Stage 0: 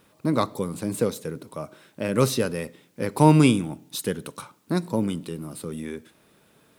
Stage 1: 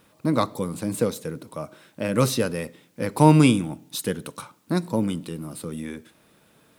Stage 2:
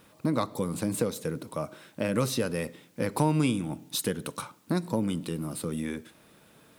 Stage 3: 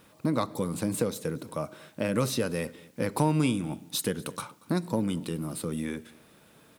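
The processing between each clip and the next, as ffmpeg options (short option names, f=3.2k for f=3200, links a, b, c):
-af "bandreject=f=400:w=12,volume=1dB"
-af "acompressor=threshold=-27dB:ratio=2.5,volume=1dB"
-af "aecho=1:1:235:0.0708"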